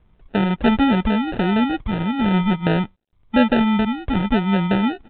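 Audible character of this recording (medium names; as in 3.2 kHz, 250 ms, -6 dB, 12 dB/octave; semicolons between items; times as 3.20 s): phasing stages 4, 0.44 Hz, lowest notch 660–1600 Hz; aliases and images of a low sample rate 1.1 kHz, jitter 0%; µ-law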